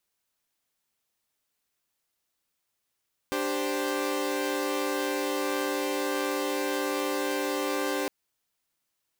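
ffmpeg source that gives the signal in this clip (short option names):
-f lavfi -i "aevalsrc='0.0355*((2*mod(293.66*t,1)-1)+(2*mod(392*t,1)-1)+(2*mod(523.25*t,1)-1))':d=4.76:s=44100"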